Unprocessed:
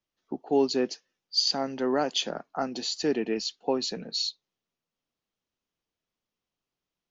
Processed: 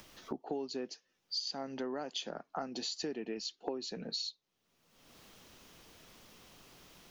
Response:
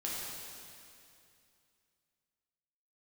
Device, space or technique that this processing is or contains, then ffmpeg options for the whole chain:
upward and downward compression: -filter_complex "[0:a]asettb=1/sr,asplit=3[a][b][c];[a]atrim=end=3.424[d];[b]atrim=start=3.42:end=3.89,asetpts=PTS-STARTPTS,afade=t=in:d=0.004:c=qsin,afade=t=out:st=0.466:d=0.004:c=qsin,equalizer=f=340:t=o:w=0.61:g=7.5[e];[c]atrim=start=3.886[f];[d][e]acrossfade=d=0.004:c1=hsin:c2=qsin[g];[g][f]acrossfade=d=0.004:c1=qsin:c2=hsin,acompressor=mode=upward:threshold=-39dB:ratio=2.5,acompressor=threshold=-39dB:ratio=8,volume=3dB"

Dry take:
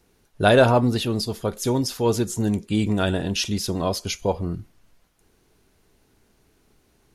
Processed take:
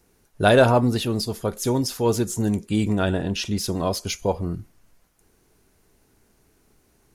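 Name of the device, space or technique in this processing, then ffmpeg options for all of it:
exciter from parts: -filter_complex "[0:a]asplit=2[a][b];[b]highpass=3.4k,asoftclip=type=tanh:threshold=-36dB,highpass=2.7k,volume=-5dB[c];[a][c]amix=inputs=2:normalize=0,asettb=1/sr,asplit=3[d][e][f];[d]atrim=end=2.954[g];[e]atrim=start=2.95:end=3.58,asetpts=PTS-STARTPTS,afade=t=in:d=0.004:c=qsin,afade=t=out:st=0.626:d=0.004:c=qsin,aemphasis=mode=reproduction:type=cd[h];[f]atrim=start=3.576[i];[g][h]acrossfade=d=0.004:c1=hsin:c2=qsin[j];[j][i]acrossfade=d=0.004:c1=qsin:c2=hsin"

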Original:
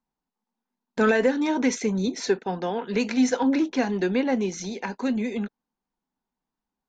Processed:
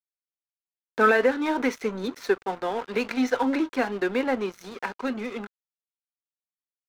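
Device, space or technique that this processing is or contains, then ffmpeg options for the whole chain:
pocket radio on a weak battery: -af "highpass=300,lowpass=3.9k,aeval=exprs='sgn(val(0))*max(abs(val(0))-0.00891,0)':c=same,equalizer=f=1.3k:t=o:w=0.47:g=6.5,volume=1.5dB"

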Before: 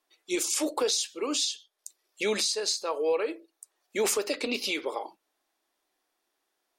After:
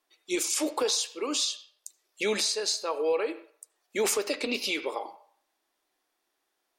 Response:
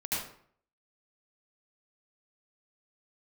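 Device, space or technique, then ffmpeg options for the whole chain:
filtered reverb send: -filter_complex "[0:a]asettb=1/sr,asplit=3[a][b][c];[a]atrim=end=0.834[d];[b]atrim=start=0.83:end=1.51,asetpts=PTS-STARTPTS,afade=t=in:d=0.004:c=qsin,afade=t=out:st=0.676:d=0.004:c=qsin,highpass=f=170:p=1[e];[c]atrim=start=1.506[f];[d][e]acrossfade=d=0.004:c1=hsin:c2=qsin[g];[g][f]acrossfade=d=0.004:c1=qsin:c2=hsin,asplit=2[h][i];[i]highpass=f=590:w=0.5412,highpass=f=590:w=1.3066,lowpass=3.9k[j];[1:a]atrim=start_sample=2205[k];[j][k]afir=irnorm=-1:irlink=0,volume=-18.5dB[l];[h][l]amix=inputs=2:normalize=0"

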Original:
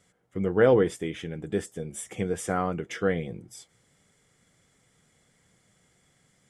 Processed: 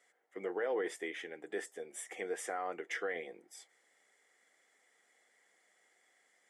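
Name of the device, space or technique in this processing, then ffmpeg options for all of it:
laptop speaker: -af "highpass=f=340:w=0.5412,highpass=f=340:w=1.3066,equalizer=f=760:t=o:w=0.48:g=6,equalizer=f=1.9k:t=o:w=0.44:g=10.5,alimiter=limit=-20dB:level=0:latency=1:release=22,volume=-7.5dB"

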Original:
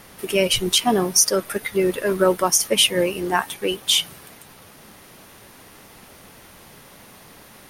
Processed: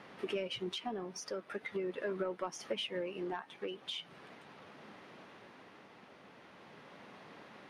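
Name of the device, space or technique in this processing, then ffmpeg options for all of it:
AM radio: -af "highpass=180,lowpass=3.5k,acompressor=threshold=-27dB:ratio=10,asoftclip=type=tanh:threshold=-19.5dB,tremolo=f=0.41:d=0.35,highshelf=f=4.2k:g=-6.5,volume=-5dB"

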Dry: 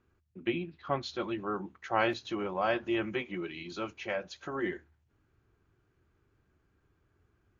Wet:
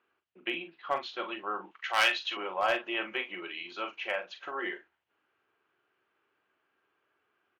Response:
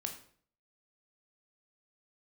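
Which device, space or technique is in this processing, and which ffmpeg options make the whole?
megaphone: -filter_complex "[0:a]highpass=600,lowpass=3.1k,equalizer=f=2.9k:t=o:w=0.41:g=7,asoftclip=type=hard:threshold=-22dB,asplit=2[a][b];[b]adelay=42,volume=-9dB[c];[a][c]amix=inputs=2:normalize=0,asettb=1/sr,asplit=3[d][e][f];[d]atrim=end=1.714[g];[e]atrim=start=1.71:end=2.37,asetpts=PTS-STARTPTS,afade=t=in:d=0.004:c=qsin,afade=t=out:st=0.656:d=0.004:c=qsin,tiltshelf=f=1.1k:g=-9.5[h];[f]atrim=start=2.366[i];[g][h]acrossfade=d=0.004:c1=hsin:c2=qsin[j];[j][i]acrossfade=d=0.004:c1=qsin:c2=hsin,volume=3dB"

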